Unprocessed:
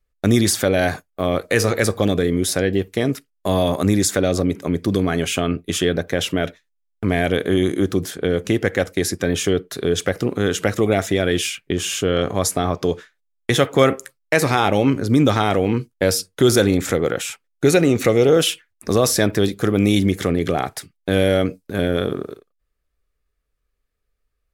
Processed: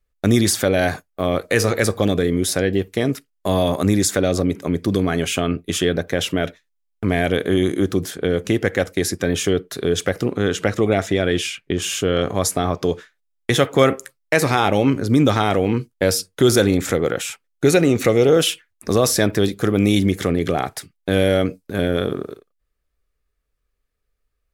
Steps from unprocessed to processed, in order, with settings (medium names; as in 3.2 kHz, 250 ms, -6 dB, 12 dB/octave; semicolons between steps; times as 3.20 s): 10.30–11.82 s: treble shelf 9.9 kHz -12 dB